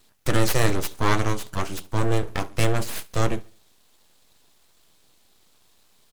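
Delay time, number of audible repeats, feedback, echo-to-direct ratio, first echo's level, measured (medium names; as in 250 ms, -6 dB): 70 ms, 2, 40%, -21.5 dB, -22.0 dB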